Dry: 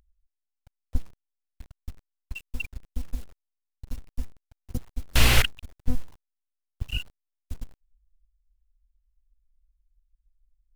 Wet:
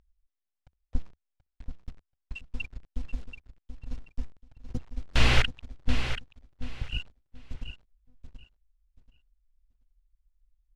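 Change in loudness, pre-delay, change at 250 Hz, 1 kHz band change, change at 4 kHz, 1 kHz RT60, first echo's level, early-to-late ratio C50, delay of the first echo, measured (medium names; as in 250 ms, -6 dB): -4.0 dB, no reverb, -1.0 dB, -1.5 dB, -3.5 dB, no reverb, -9.5 dB, no reverb, 732 ms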